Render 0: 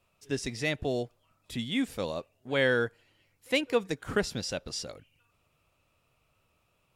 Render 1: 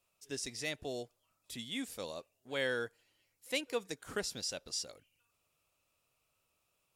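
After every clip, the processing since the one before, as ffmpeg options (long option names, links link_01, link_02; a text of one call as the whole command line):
ffmpeg -i in.wav -af "bass=frequency=250:gain=-6,treble=frequency=4000:gain=10,volume=-9dB" out.wav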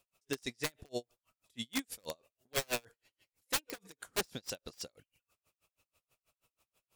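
ffmpeg -i in.wav -af "aeval=exprs='(mod(31.6*val(0)+1,2)-1)/31.6':channel_layout=same,aeval=exprs='val(0)*pow(10,-38*(0.5-0.5*cos(2*PI*6.2*n/s))/20)':channel_layout=same,volume=7dB" out.wav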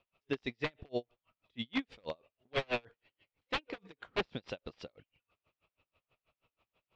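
ffmpeg -i in.wav -af "lowpass=frequency=3300:width=0.5412,lowpass=frequency=3300:width=1.3066,equalizer=frequency=1600:width=3.4:gain=-3.5,volume=3dB" out.wav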